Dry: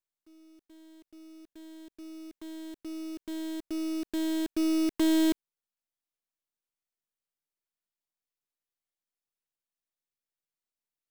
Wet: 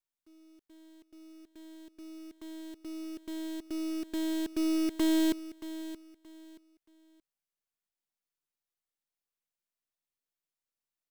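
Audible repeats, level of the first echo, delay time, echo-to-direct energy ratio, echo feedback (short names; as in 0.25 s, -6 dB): 2, -14.0 dB, 0.626 s, -13.5 dB, 26%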